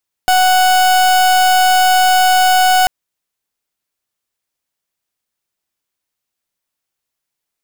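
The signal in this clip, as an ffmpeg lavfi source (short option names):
-f lavfi -i "aevalsrc='0.299*(2*lt(mod(741*t,1),0.37)-1)':d=2.59:s=44100"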